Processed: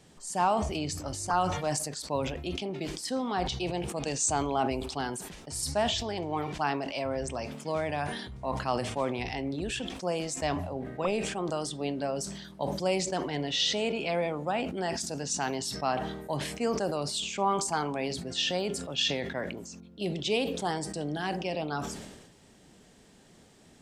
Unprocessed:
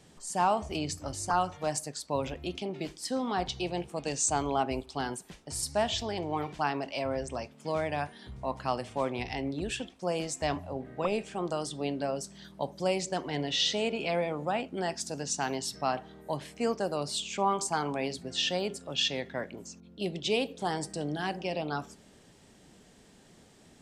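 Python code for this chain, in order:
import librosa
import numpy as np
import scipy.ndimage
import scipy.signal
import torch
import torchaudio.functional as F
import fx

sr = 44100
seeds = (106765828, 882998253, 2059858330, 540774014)

y = fx.sustainer(x, sr, db_per_s=47.0)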